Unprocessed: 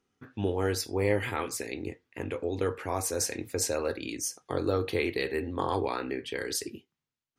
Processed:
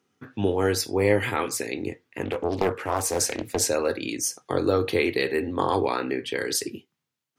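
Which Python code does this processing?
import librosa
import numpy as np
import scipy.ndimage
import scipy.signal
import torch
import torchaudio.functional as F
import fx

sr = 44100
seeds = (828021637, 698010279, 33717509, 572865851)

y = scipy.signal.sosfilt(scipy.signal.butter(4, 97.0, 'highpass', fs=sr, output='sos'), x)
y = fx.doppler_dist(y, sr, depth_ms=0.68, at=(2.25, 3.63))
y = y * 10.0 ** (6.0 / 20.0)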